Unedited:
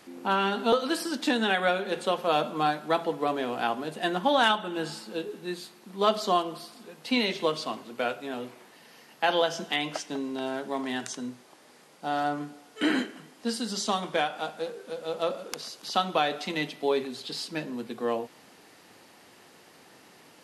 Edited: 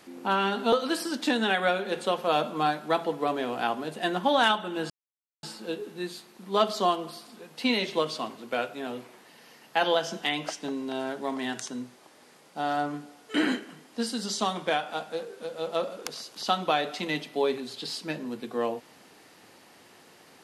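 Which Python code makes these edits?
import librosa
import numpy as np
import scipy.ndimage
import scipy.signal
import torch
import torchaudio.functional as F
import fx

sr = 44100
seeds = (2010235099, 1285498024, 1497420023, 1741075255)

y = fx.edit(x, sr, fx.insert_silence(at_s=4.9, length_s=0.53), tone=tone)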